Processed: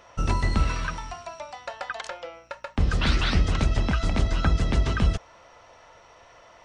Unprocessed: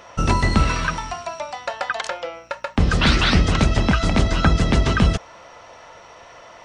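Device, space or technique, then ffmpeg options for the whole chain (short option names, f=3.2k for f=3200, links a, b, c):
low shelf boost with a cut just above: -af "lowshelf=f=74:g=8,equalizer=f=190:t=o:w=0.77:g=-2,volume=-8.5dB"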